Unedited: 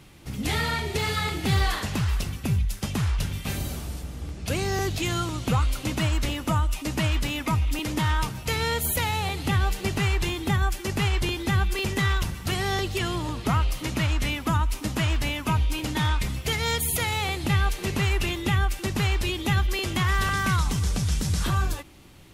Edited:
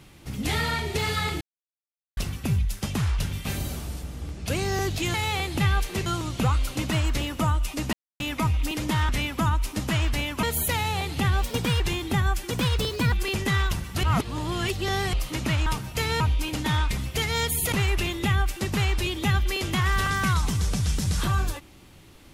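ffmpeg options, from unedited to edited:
-filter_complex "[0:a]asplit=18[s0][s1][s2][s3][s4][s5][s6][s7][s8][s9][s10][s11][s12][s13][s14][s15][s16][s17];[s0]atrim=end=1.41,asetpts=PTS-STARTPTS,afade=t=out:st=1.406:d=0.004:c=hsin[s18];[s1]atrim=start=1.41:end=2.17,asetpts=PTS-STARTPTS,volume=0[s19];[s2]atrim=start=2.17:end=5.142,asetpts=PTS-STARTPTS,afade=t=in:d=0.004:c=hsin[s20];[s3]atrim=start=17.028:end=17.952[s21];[s4]atrim=start=5.138:end=7.01,asetpts=PTS-STARTPTS,afade=t=out:st=1.868:d=0.004:c=hsin[s22];[s5]atrim=start=7.01:end=7.28,asetpts=PTS-STARTPTS,volume=0[s23];[s6]atrim=start=7.28:end=8.172,asetpts=PTS-STARTPTS,afade=t=in:d=0.004:c=hsin[s24];[s7]atrim=start=14.168:end=15.512[s25];[s8]atrim=start=8.708:end=9.714[s26];[s9]atrim=start=9.71:end=10.16,asetpts=PTS-STARTPTS,asetrate=53361,aresample=44100[s27];[s10]atrim=start=10.156:end=10.864[s28];[s11]atrim=start=10.86:end=11.63,asetpts=PTS-STARTPTS,asetrate=54684,aresample=44100[s29];[s12]atrim=start=11.626:end=12.542[s30];[s13]atrim=start=12.538:end=13.642,asetpts=PTS-STARTPTS,areverse[s31];[s14]atrim=start=13.638:end=14.172[s32];[s15]atrim=start=8.168:end=8.712[s33];[s16]atrim=start=15.508:end=17.032[s34];[s17]atrim=start=17.948[s35];[s18][s19][s20]concat=n=3:v=0:a=1[s36];[s36][s21]acrossfade=d=0.004:c1=hsin:c2=hsin[s37];[s22][s23][s24]concat=n=3:v=0:a=1[s38];[s37][s38]acrossfade=d=0.004:c1=hsin:c2=hsin[s39];[s39][s25]acrossfade=d=0.004:c1=hsin:c2=hsin[s40];[s40][s26]acrossfade=d=0.004:c1=hsin:c2=hsin[s41];[s41][s27]acrossfade=d=0.004:c1=hsin:c2=hsin[s42];[s42][s28]acrossfade=d=0.004:c1=hsin:c2=hsin[s43];[s43][s29]acrossfade=d=0.004:c1=hsin:c2=hsin[s44];[s44][s30]acrossfade=d=0.004:c1=hsin:c2=hsin[s45];[s45][s31]acrossfade=d=0.004:c1=hsin:c2=hsin[s46];[s46][s32]acrossfade=d=0.004:c1=hsin:c2=hsin[s47];[s47][s33]acrossfade=d=0.004:c1=hsin:c2=hsin[s48];[s48][s34]acrossfade=d=0.004:c1=hsin:c2=hsin[s49];[s49][s35]acrossfade=d=0.004:c1=hsin:c2=hsin"

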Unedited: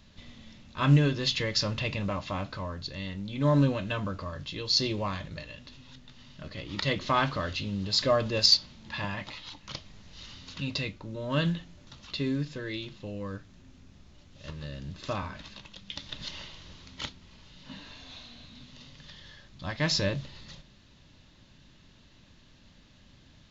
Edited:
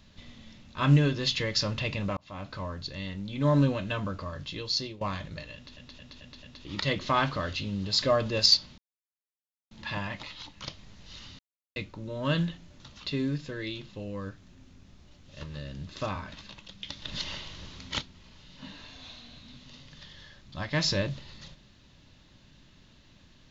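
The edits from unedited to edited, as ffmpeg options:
-filter_complex "[0:a]asplit=13[s0][s1][s2][s3][s4][s5][s6][s7][s8][s9][s10][s11][s12];[s0]atrim=end=2.17,asetpts=PTS-STARTPTS,afade=t=out:st=2.166:d=0.004:c=hsin[s13];[s1]atrim=start=2.17:end=5.01,asetpts=PTS-STARTPTS,afade=t=in:d=0.44,afade=t=out:st=2.39:d=0.45:silence=0.112202[s14];[s2]atrim=start=5.01:end=5.772,asetpts=PTS-STARTPTS,afade=t=in:d=0.004:c=hsin:silence=0.112202[s15];[s3]atrim=start=5.548:end=5.772[s16];[s4]atrim=start=5.548:end=5.772[s17];[s5]atrim=start=5.548:end=5.772[s18];[s6]atrim=start=5.548:end=5.772[s19];[s7]atrim=start=6.648:end=8.78,asetpts=PTS-STARTPTS,afade=t=out:st=2.128:d=0.004:c=hsin,apad=pad_dur=0.93[s20];[s8]atrim=start=8.78:end=10.46,asetpts=PTS-STARTPTS,afade=t=in:d=0.004:c=hsin,afade=t=out:st=1.676:d=0.004:c=hsin[s21];[s9]atrim=start=10.46:end=10.83,asetpts=PTS-STARTPTS,volume=0[s22];[s10]atrim=start=10.83:end=16.152,asetpts=PTS-STARTPTS,afade=t=in:d=0.004:c=hsin[s23];[s11]atrim=start=16.148:end=17.082,asetpts=PTS-STARTPTS,volume=1.68[s24];[s12]atrim=start=17.078[s25];[s13][s14][s15]concat=n=3:v=0:a=1[s26];[s26][s16]acrossfade=d=0.004:c1=hsin:c2=hsin[s27];[s27][s17]acrossfade=d=0.004:c1=hsin:c2=hsin[s28];[s28][s18]acrossfade=d=0.004:c1=hsin:c2=hsin[s29];[s29][s19]acrossfade=d=0.004:c1=hsin:c2=hsin[s30];[s20][s21][s22][s23]concat=n=4:v=0:a=1[s31];[s30][s31]acrossfade=d=0.004:c1=hsin:c2=hsin[s32];[s32][s24]acrossfade=d=0.004:c1=hsin:c2=hsin[s33];[s33][s25]acrossfade=d=0.004:c1=hsin:c2=hsin"

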